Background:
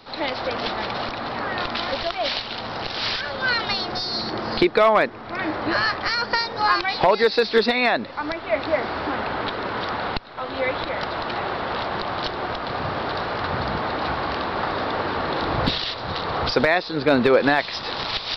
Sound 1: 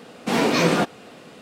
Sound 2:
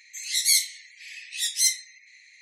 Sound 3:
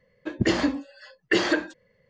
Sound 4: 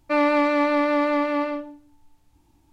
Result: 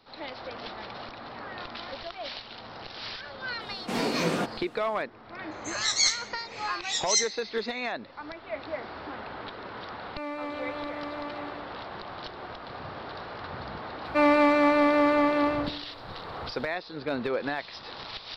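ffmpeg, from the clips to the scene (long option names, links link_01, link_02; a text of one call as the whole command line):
ffmpeg -i bed.wav -i cue0.wav -i cue1.wav -i cue2.wav -i cue3.wav -filter_complex "[4:a]asplit=2[link_01][link_02];[0:a]volume=-13dB[link_03];[2:a]aresample=16000,aresample=44100[link_04];[1:a]atrim=end=1.41,asetpts=PTS-STARTPTS,volume=-8.5dB,afade=type=in:duration=0.004:curve=hsin,afade=type=out:start_time=1.406:duration=0.004:curve=hsin,adelay=159201S[link_05];[link_04]atrim=end=2.41,asetpts=PTS-STARTPTS,volume=-1.5dB,afade=type=in:duration=0.004:curve=hsin,afade=type=out:start_time=2.406:duration=0.004:curve=hsin,adelay=5510[link_06];[link_01]atrim=end=2.72,asetpts=PTS-STARTPTS,volume=-16dB,afade=type=in:duration=0.004:curve=hsin,afade=type=out:start_time=2.716:duration=0.004:curve=hsin,adelay=10060[link_07];[link_02]atrim=end=2.72,asetpts=PTS-STARTPTS,volume=-1dB,afade=type=in:duration=0.004:curve=hsin,afade=type=out:start_time=2.716:duration=0.004:curve=hsin,adelay=14050[link_08];[link_03][link_05][link_06][link_07][link_08]amix=inputs=5:normalize=0" out.wav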